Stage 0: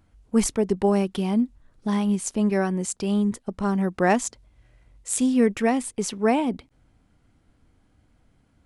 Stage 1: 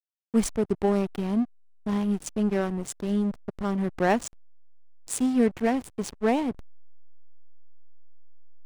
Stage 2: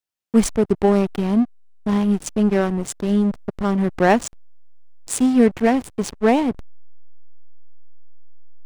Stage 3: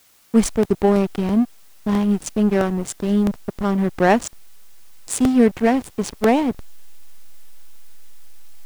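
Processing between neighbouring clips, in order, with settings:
slack as between gear wheels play −23 dBFS; level −2 dB
high-shelf EQ 8,500 Hz −3 dB; level +7.5 dB
background noise white −55 dBFS; regular buffer underruns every 0.33 s, samples 64, repeat, from 0:00.63

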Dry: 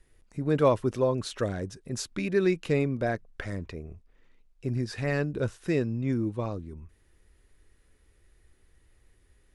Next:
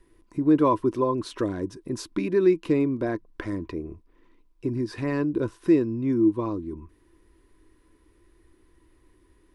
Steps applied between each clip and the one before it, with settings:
parametric band 7,000 Hz −4.5 dB 0.33 octaves
in parallel at +2 dB: downward compressor, threshold −34 dBFS, peak gain reduction 16.5 dB
on the sum: hollow resonant body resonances 320/1,000 Hz, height 17 dB, ringing for 45 ms
level −7 dB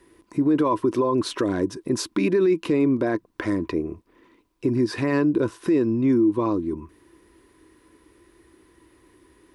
high-pass filter 46 Hz
low-shelf EQ 100 Hz −11.5 dB
brickwall limiter −21.5 dBFS, peak gain reduction 11 dB
level +8.5 dB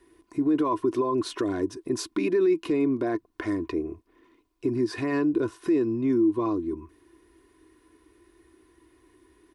comb filter 2.8 ms, depth 47%
level −5.5 dB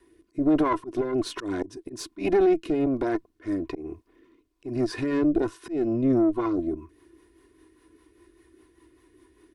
volume swells 132 ms
tube saturation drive 19 dB, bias 0.7
rotating-speaker cabinet horn 1.2 Hz, later 5 Hz, at 0:05.39
level +6.5 dB

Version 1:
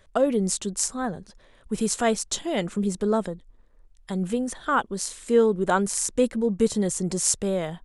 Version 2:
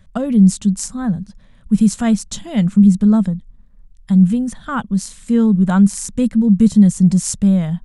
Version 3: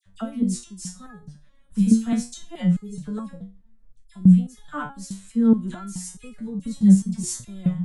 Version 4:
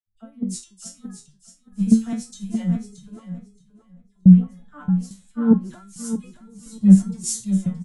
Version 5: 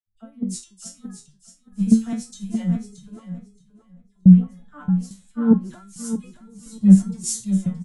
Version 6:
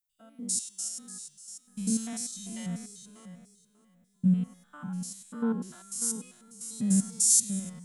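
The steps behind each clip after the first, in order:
low shelf with overshoot 270 Hz +10.5 dB, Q 3
all-pass dispersion lows, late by 58 ms, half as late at 1,900 Hz; step-sequenced resonator 4.7 Hz 97–420 Hz; level +3 dB
repeating echo 624 ms, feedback 38%, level −5.5 dB; multiband upward and downward expander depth 100%; level −5 dB
no processing that can be heard
spectrum averaged block by block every 100 ms; RIAA equalisation recording; level −3.5 dB

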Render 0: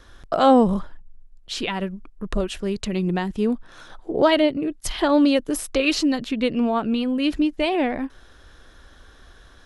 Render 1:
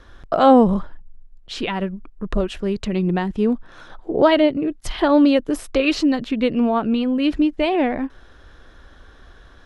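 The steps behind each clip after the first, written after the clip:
low-pass filter 2,700 Hz 6 dB per octave
level +3 dB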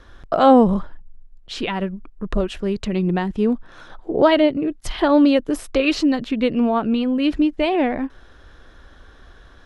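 no processing that can be heard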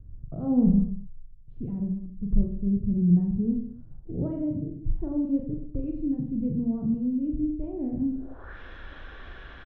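low-pass filter sweep 130 Hz → 2,600 Hz, 0:07.96–0:08.59
reverse bouncing-ball delay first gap 40 ms, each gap 1.15×, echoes 5

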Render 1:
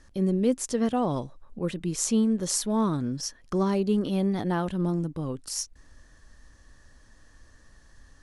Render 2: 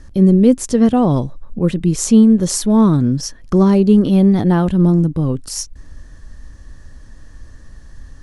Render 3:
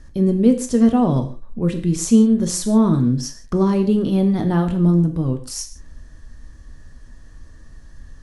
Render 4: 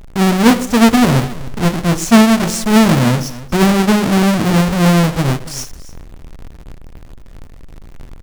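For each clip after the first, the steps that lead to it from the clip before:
low-shelf EQ 320 Hz +11 dB; level +7 dB
reverb whose tail is shaped and stops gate 190 ms falling, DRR 5.5 dB; level −5 dB
each half-wave held at its own peak; single-tap delay 281 ms −17.5 dB; highs frequency-modulated by the lows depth 0.42 ms; level +1 dB

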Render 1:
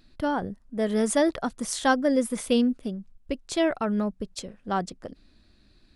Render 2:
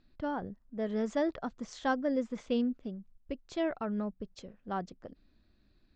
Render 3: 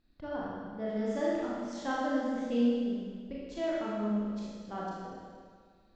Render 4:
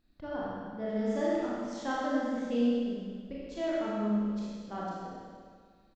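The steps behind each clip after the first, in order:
Butterworth low-pass 7,400 Hz 72 dB per octave; high-shelf EQ 3,900 Hz −11.5 dB; level −8 dB
four-comb reverb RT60 1.8 s, combs from 26 ms, DRR −6.5 dB; level −7 dB
single-tap delay 95 ms −7.5 dB

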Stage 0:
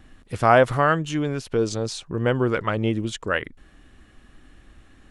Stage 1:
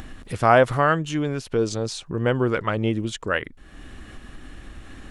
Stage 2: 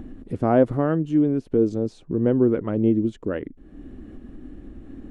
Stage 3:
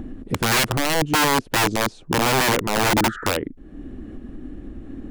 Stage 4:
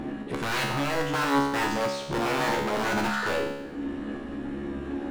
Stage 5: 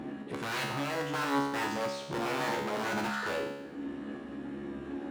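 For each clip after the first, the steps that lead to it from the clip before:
upward compression, threshold −28 dBFS
drawn EQ curve 130 Hz 0 dB, 280 Hz +10 dB, 1,100 Hz −11 dB, 5,400 Hz −19 dB; level −1.5 dB
healed spectral selection 0:03.06–0:03.27, 1,200–2,400 Hz after; wrap-around overflow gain 17.5 dB; level +4.5 dB
mid-hump overdrive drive 31 dB, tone 3,700 Hz, clips at −12.5 dBFS; tuned comb filter 70 Hz, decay 0.97 s, harmonics all, mix 90%; level +2.5 dB
high-pass filter 100 Hz 12 dB per octave; level −6 dB

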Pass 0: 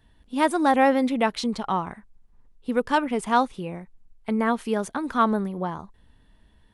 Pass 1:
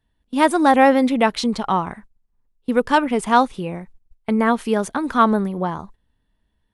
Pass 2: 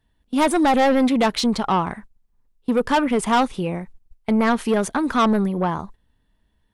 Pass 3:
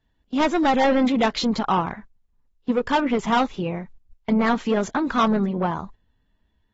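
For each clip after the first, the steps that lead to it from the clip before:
noise gate −46 dBFS, range −17 dB; level +5.5 dB
soft clipping −15.5 dBFS, distortion −8 dB; level +3 dB
level −2.5 dB; AAC 24 kbit/s 44,100 Hz

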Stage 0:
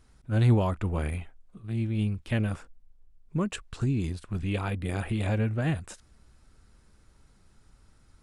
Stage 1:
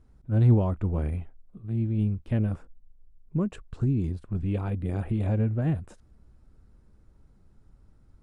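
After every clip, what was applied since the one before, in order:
tilt shelving filter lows +8.5 dB, about 1,100 Hz
level −6 dB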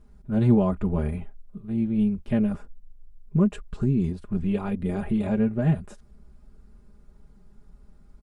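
comb filter 4.9 ms, depth 83%
level +2.5 dB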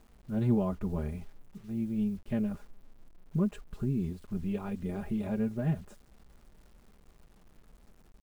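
bit reduction 9 bits
level −8 dB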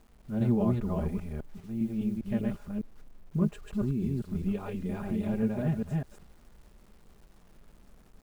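delay that plays each chunk backwards 201 ms, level −1.5 dB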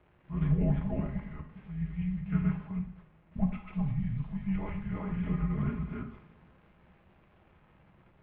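single-sideband voice off tune −390 Hz 240–3,200 Hz
coupled-rooms reverb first 0.55 s, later 2.4 s, from −21 dB, DRR 3 dB
level +2 dB

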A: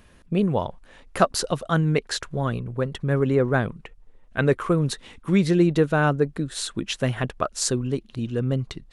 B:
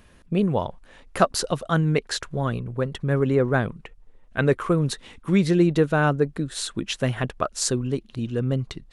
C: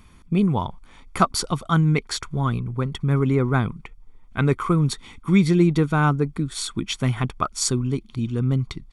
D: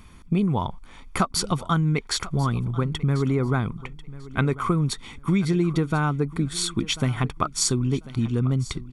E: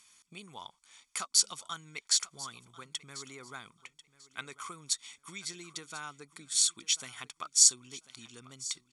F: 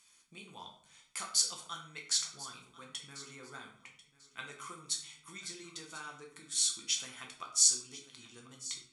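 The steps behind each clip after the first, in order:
no processing that can be heard
comb filter 0.9 ms, depth 66%
downward compressor, threshold −21 dBFS, peak gain reduction 9.5 dB; repeating echo 1,042 ms, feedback 21%, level −18 dB; level +2.5 dB
resonant band-pass 7,000 Hz, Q 1.7; level +5 dB
rectangular room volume 75 cubic metres, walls mixed, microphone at 0.75 metres; level −5.5 dB

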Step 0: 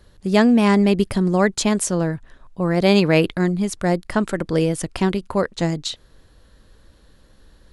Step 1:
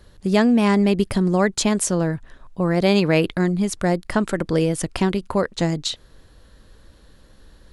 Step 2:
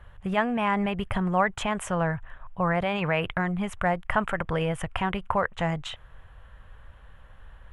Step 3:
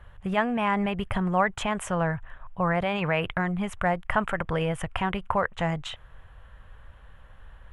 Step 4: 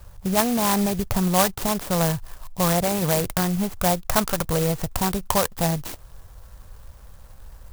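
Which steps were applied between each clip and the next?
downward compressor 1.5 to 1, threshold −21 dBFS, peak gain reduction 4.5 dB; level +2 dB
brickwall limiter −11.5 dBFS, peak gain reduction 7 dB; drawn EQ curve 110 Hz 0 dB, 310 Hz −17 dB, 760 Hz +2 dB, 1,200 Hz +3 dB, 3,100 Hz −2 dB, 4,400 Hz −25 dB, 7,900 Hz −16 dB; level +1.5 dB
no processing that can be heard
in parallel at −6 dB: decimation without filtering 16×; on the sum: converter with an unsteady clock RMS 0.12 ms; level +1.5 dB

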